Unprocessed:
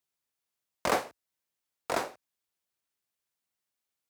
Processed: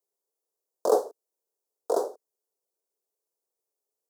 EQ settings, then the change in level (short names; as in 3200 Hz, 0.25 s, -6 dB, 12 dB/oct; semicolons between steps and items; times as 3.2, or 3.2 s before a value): resonant high-pass 430 Hz, resonance Q 5; Butterworth band-stop 2300 Hz, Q 0.51; 0.0 dB